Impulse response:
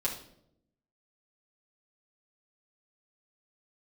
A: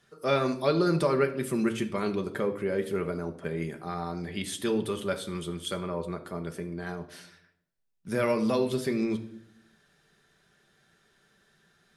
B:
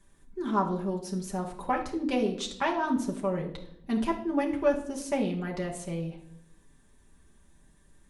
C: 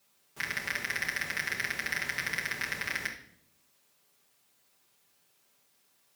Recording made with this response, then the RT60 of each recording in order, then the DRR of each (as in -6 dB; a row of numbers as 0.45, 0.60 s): C; 0.75, 0.70, 0.70 s; 5.0, -1.0, -5.5 dB